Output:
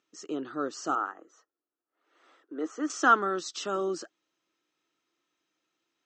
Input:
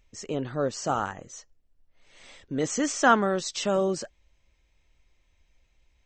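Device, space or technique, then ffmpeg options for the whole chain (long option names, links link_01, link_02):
television speaker: -filter_complex "[0:a]highpass=frequency=210:width=0.5412,highpass=frequency=210:width=1.3066,equalizer=frequency=220:width_type=q:width=4:gain=-7,equalizer=frequency=320:width_type=q:width=4:gain=9,equalizer=frequency=570:width_type=q:width=4:gain=-7,equalizer=frequency=910:width_type=q:width=4:gain=-4,equalizer=frequency=1300:width_type=q:width=4:gain=10,equalizer=frequency=2200:width_type=q:width=4:gain=-9,lowpass=frequency=7600:width=0.5412,lowpass=frequency=7600:width=1.3066,asettb=1/sr,asplit=3[link_01][link_02][link_03];[link_01]atrim=end=0.954[link_04];[link_02]atrim=start=0.95:end=2.9,asetpts=PTS-STARTPTS,afade=type=in:duration=0.004:curve=qsin,afade=type=out:start_time=1.946:duration=0.004:curve=qsin,acrossover=split=280 2000:gain=0.0708 1 0.178[link_05][link_06][link_07];[link_05][link_06][link_07]amix=inputs=3:normalize=0[link_08];[link_03]atrim=start=2.896[link_09];[link_04][link_08]acrossfade=duration=0.004:curve1=hsin:curve2=qsin[link_10];[link_10][link_09]acrossfade=duration=0.004:curve1=qsin:curve2=hsin,volume=-4.5dB"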